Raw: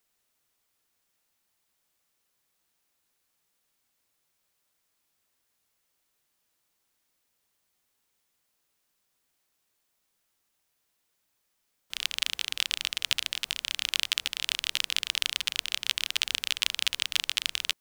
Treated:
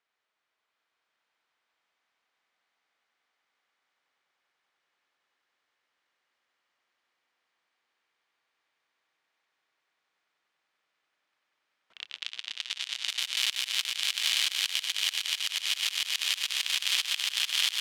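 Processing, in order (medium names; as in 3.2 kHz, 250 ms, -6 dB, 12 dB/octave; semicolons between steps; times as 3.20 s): high-pass 1.2 kHz 6 dB/octave; band-stop 2.7 kHz, Q 26; on a send: echo with a slow build-up 96 ms, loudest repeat 8, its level -9 dB; on the sum: slow attack 156 ms; in parallel at 0 dB: peak limiter -17 dBFS, peak gain reduction 8 dB; on the sum: level-controlled noise filter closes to 2.3 kHz, open at -25 dBFS; trim -2 dB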